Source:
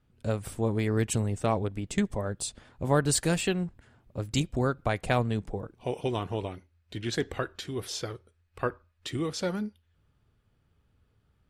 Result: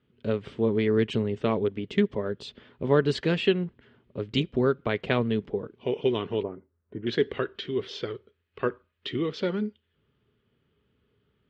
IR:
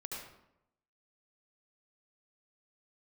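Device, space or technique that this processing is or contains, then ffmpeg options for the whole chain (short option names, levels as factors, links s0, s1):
guitar cabinet: -filter_complex "[0:a]highpass=84,equalizer=f=90:t=q:w=4:g=-8,equalizer=f=230:t=q:w=4:g=5,equalizer=f=410:t=q:w=4:g=10,equalizer=f=760:t=q:w=4:g=-7,equalizer=f=2000:t=q:w=4:g=3,equalizer=f=3100:t=q:w=4:g=7,lowpass=f=4100:w=0.5412,lowpass=f=4100:w=1.3066,asettb=1/sr,asplit=3[s0][s1][s2];[s0]atrim=end=6.434[s3];[s1]atrim=start=6.43:end=7.07,asetpts=PTS-STARTPTS,afade=t=in:d=0.004:c=qsin,afade=t=out:st=0.636:d=0.004:c=qsin,lowpass=f=1300:w=0.5412,lowpass=f=1300:w=1.3066[s4];[s2]atrim=start=7.066[s5];[s3][s4]acrossfade=d=0.004:c1=hsin:c2=qsin[s6];[s6][s5]acrossfade=d=0.004:c1=qsin:c2=hsin"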